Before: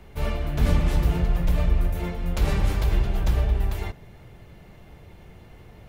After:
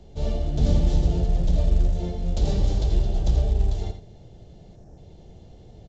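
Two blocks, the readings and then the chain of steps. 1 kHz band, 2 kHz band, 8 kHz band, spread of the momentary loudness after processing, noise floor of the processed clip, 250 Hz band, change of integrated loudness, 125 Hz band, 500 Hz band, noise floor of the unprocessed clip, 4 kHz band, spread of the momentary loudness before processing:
−5.0 dB, −13.0 dB, −1.5 dB, 7 LU, −48 dBFS, +0.5 dB, +0.5 dB, +0.5 dB, +0.5 dB, −48 dBFS, −1.5 dB, 7 LU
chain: flat-topped bell 1,600 Hz −15.5 dB
time-frequency box erased 0:04.76–0:04.97, 1,900–5,000 Hz
on a send: single-tap delay 84 ms −9 dB
on the sum: mu-law 128 kbit/s 16,000 Hz

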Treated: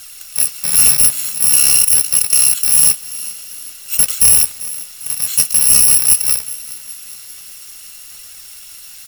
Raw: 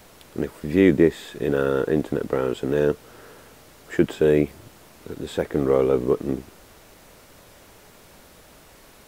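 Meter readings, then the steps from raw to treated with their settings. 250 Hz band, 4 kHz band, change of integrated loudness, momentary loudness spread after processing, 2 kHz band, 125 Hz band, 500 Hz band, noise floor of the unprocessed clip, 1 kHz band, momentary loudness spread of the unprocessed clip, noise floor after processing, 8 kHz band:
−17.0 dB, +21.5 dB, +13.0 dB, 19 LU, +5.0 dB, −5.5 dB, below −20 dB, −50 dBFS, −1.0 dB, 13 LU, −36 dBFS, can't be measured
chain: samples in bit-reversed order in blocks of 128 samples
tilt shelving filter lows −10 dB
in parallel at +0.5 dB: brickwall limiter −5 dBFS, peak gain reduction 10.5 dB
on the sum: flanger 0.48 Hz, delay 1.2 ms, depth 6.4 ms, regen +56%
on a send: echo with shifted repeats 396 ms, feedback 50%, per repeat +49 Hz, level −20 dB
on the sum: sine wavefolder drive 8 dB, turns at 4.5 dBFS
level −8 dB

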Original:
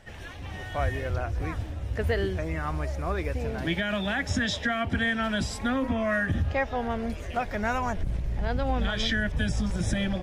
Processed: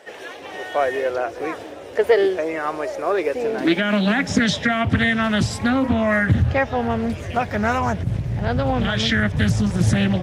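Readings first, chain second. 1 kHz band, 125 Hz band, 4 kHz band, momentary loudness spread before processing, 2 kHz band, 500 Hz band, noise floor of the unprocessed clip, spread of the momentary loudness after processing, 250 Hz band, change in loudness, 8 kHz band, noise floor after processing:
+7.5 dB, +8.0 dB, +6.5 dB, 6 LU, +7.0 dB, +10.5 dB, −39 dBFS, 8 LU, +9.5 dB, +8.5 dB, +7.0 dB, −36 dBFS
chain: high-pass filter sweep 430 Hz → 110 Hz, 0:03.22–0:04.86
highs frequency-modulated by the lows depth 0.45 ms
level +7 dB

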